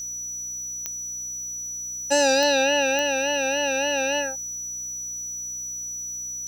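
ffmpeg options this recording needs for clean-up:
-af "adeclick=t=4,bandreject=f=61.4:t=h:w=4,bandreject=f=122.8:t=h:w=4,bandreject=f=184.2:t=h:w=4,bandreject=f=245.6:t=h:w=4,bandreject=f=307:t=h:w=4,bandreject=f=5900:w=30,afftdn=nr=30:nf=-33"

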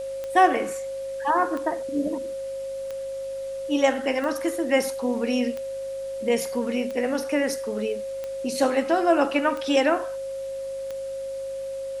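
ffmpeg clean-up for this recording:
-af "adeclick=t=4,bandreject=f=50.8:t=h:w=4,bandreject=f=101.6:t=h:w=4,bandreject=f=152.4:t=h:w=4,bandreject=f=203.2:t=h:w=4,bandreject=f=254:t=h:w=4,bandreject=f=304.8:t=h:w=4,bandreject=f=540:w=30,afwtdn=0.0032"

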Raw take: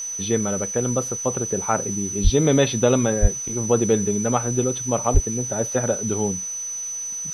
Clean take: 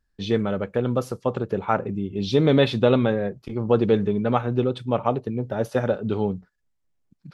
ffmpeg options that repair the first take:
-filter_complex "[0:a]bandreject=f=6000:w=30,asplit=3[s0][s1][s2];[s0]afade=t=out:st=2.23:d=0.02[s3];[s1]highpass=f=140:w=0.5412,highpass=f=140:w=1.3066,afade=t=in:st=2.23:d=0.02,afade=t=out:st=2.35:d=0.02[s4];[s2]afade=t=in:st=2.35:d=0.02[s5];[s3][s4][s5]amix=inputs=3:normalize=0,asplit=3[s6][s7][s8];[s6]afade=t=out:st=3.21:d=0.02[s9];[s7]highpass=f=140:w=0.5412,highpass=f=140:w=1.3066,afade=t=in:st=3.21:d=0.02,afade=t=out:st=3.33:d=0.02[s10];[s8]afade=t=in:st=3.33:d=0.02[s11];[s9][s10][s11]amix=inputs=3:normalize=0,asplit=3[s12][s13][s14];[s12]afade=t=out:st=5.13:d=0.02[s15];[s13]highpass=f=140:w=0.5412,highpass=f=140:w=1.3066,afade=t=in:st=5.13:d=0.02,afade=t=out:st=5.25:d=0.02[s16];[s14]afade=t=in:st=5.25:d=0.02[s17];[s15][s16][s17]amix=inputs=3:normalize=0,afwtdn=0.005"

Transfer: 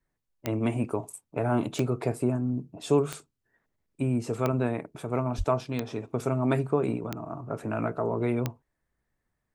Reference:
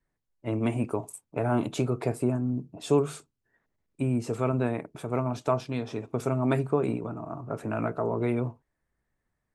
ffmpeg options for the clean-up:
-filter_complex "[0:a]adeclick=t=4,asplit=3[s0][s1][s2];[s0]afade=t=out:st=5.37:d=0.02[s3];[s1]highpass=f=140:w=0.5412,highpass=f=140:w=1.3066,afade=t=in:st=5.37:d=0.02,afade=t=out:st=5.49:d=0.02[s4];[s2]afade=t=in:st=5.49:d=0.02[s5];[s3][s4][s5]amix=inputs=3:normalize=0"

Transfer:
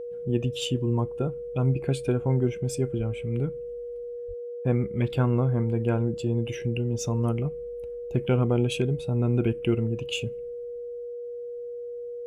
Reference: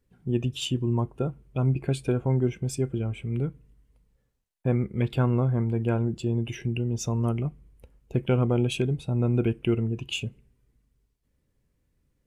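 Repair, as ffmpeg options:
-filter_complex "[0:a]bandreject=f=480:w=30,asplit=3[s0][s1][s2];[s0]afade=t=out:st=2.97:d=0.02[s3];[s1]highpass=f=140:w=0.5412,highpass=f=140:w=1.3066,afade=t=in:st=2.97:d=0.02,afade=t=out:st=3.09:d=0.02[s4];[s2]afade=t=in:st=3.09:d=0.02[s5];[s3][s4][s5]amix=inputs=3:normalize=0,asplit=3[s6][s7][s8];[s6]afade=t=out:st=4.27:d=0.02[s9];[s7]highpass=f=140:w=0.5412,highpass=f=140:w=1.3066,afade=t=in:st=4.27:d=0.02,afade=t=out:st=4.39:d=0.02[s10];[s8]afade=t=in:st=4.39:d=0.02[s11];[s9][s10][s11]amix=inputs=3:normalize=0"

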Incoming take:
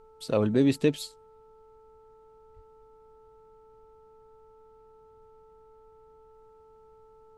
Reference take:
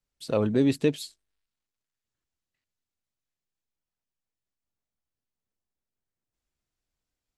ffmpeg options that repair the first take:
-filter_complex "[0:a]bandreject=f=439.7:t=h:w=4,bandreject=f=879.4:t=h:w=4,bandreject=f=1319.1:t=h:w=4,asplit=3[s0][s1][s2];[s0]afade=t=out:st=2.55:d=0.02[s3];[s1]highpass=f=140:w=0.5412,highpass=f=140:w=1.3066,afade=t=in:st=2.55:d=0.02,afade=t=out:st=2.67:d=0.02[s4];[s2]afade=t=in:st=2.67:d=0.02[s5];[s3][s4][s5]amix=inputs=3:normalize=0,agate=range=0.0891:threshold=0.00398"

